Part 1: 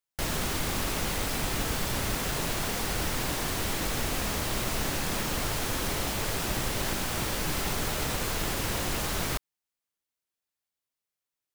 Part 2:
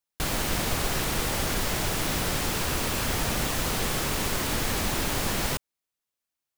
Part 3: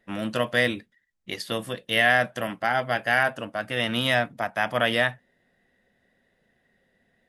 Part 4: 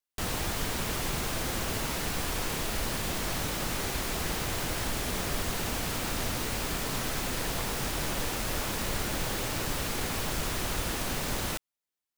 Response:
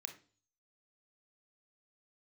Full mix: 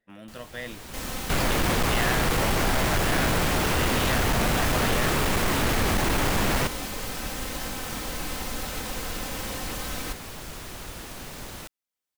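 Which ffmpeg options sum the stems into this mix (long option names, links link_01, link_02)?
-filter_complex "[0:a]aecho=1:1:3.9:0.65,adelay=750,volume=-15.5dB[link_01];[1:a]acrossover=split=2900[link_02][link_03];[link_03]acompressor=threshold=-37dB:ratio=4:attack=1:release=60[link_04];[link_02][link_04]amix=inputs=2:normalize=0,adelay=1100,volume=-4dB[link_05];[2:a]acompressor=threshold=-34dB:ratio=1.5,volume=-12.5dB[link_06];[3:a]acompressor=mode=upward:threshold=-38dB:ratio=2.5,adelay=100,volume=-17.5dB[link_07];[link_01][link_05][link_06][link_07]amix=inputs=4:normalize=0,dynaudnorm=framelen=520:gausssize=3:maxgain=10.5dB,asoftclip=type=hard:threshold=-19dB"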